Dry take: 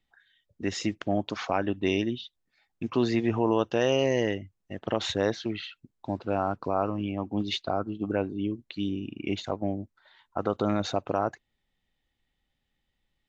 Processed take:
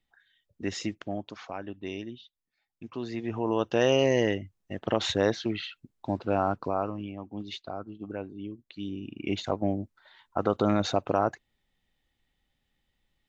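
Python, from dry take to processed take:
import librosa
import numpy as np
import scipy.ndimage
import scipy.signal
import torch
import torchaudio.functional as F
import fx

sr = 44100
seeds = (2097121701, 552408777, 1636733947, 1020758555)

y = fx.gain(x, sr, db=fx.line((0.76, -2.0), (1.4, -10.5), (3.04, -10.5), (3.81, 1.5), (6.53, 1.5), (7.21, -8.5), (8.63, -8.5), (9.47, 2.0)))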